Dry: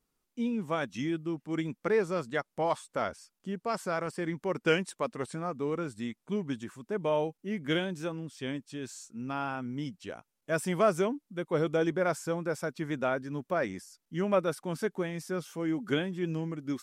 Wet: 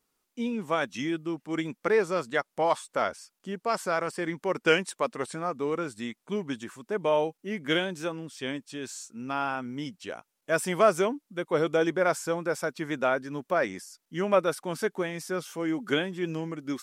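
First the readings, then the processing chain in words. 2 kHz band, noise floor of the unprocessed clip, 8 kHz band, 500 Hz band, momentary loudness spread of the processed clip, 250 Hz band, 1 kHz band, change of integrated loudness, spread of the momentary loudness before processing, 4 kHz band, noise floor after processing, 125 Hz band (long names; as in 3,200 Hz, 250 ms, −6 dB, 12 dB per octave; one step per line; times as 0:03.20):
+5.5 dB, −82 dBFS, +5.5 dB, +3.5 dB, 12 LU, +1.0 dB, +5.0 dB, +3.5 dB, 10 LU, +5.5 dB, −80 dBFS, −2.0 dB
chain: low-shelf EQ 210 Hz −12 dB
level +5.5 dB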